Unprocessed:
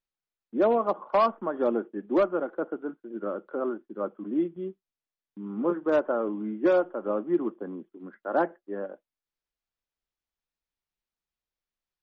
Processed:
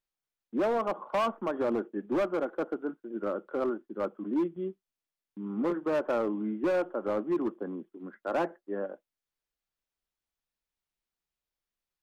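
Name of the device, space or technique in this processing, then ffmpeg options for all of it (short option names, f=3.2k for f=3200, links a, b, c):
limiter into clipper: -af "alimiter=limit=-19dB:level=0:latency=1:release=23,asoftclip=type=hard:threshold=-23.5dB"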